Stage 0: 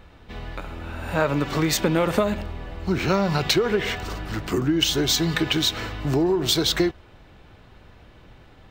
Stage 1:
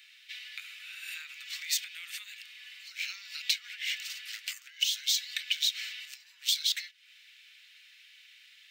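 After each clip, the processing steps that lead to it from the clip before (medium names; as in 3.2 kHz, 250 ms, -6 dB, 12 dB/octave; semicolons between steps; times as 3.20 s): compression 4:1, threshold -32 dBFS, peak gain reduction 14 dB; steep high-pass 2.1 kHz 36 dB/octave; trim +6 dB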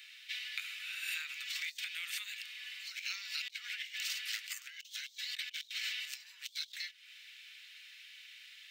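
compressor with a negative ratio -39 dBFS, ratio -0.5; trim -2 dB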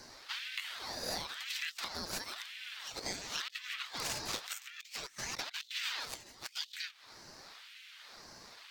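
short-mantissa float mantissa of 6-bit; frequency shift +53 Hz; ring modulator with a swept carrier 1.2 kHz, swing 80%, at 0.96 Hz; trim +3.5 dB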